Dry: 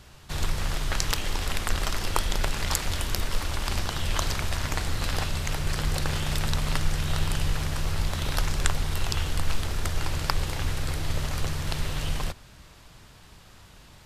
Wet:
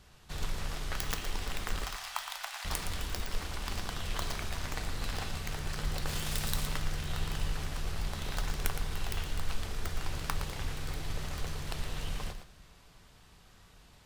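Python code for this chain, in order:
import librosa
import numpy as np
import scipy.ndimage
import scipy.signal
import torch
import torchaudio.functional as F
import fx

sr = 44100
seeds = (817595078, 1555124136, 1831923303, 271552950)

y = fx.tracing_dist(x, sr, depth_ms=0.36)
y = fx.steep_highpass(y, sr, hz=680.0, slope=48, at=(1.84, 2.65))
y = fx.high_shelf(y, sr, hz=fx.line((6.06, 6000.0), (6.66, 4200.0)), db=10.0, at=(6.06, 6.66), fade=0.02)
y = y + 10.0 ** (-9.0 / 20.0) * np.pad(y, (int(115 * sr / 1000.0), 0))[:len(y)]
y = fx.rev_double_slope(y, sr, seeds[0], early_s=0.26, late_s=2.0, knee_db=-18, drr_db=10.0)
y = F.gain(torch.from_numpy(y), -8.5).numpy()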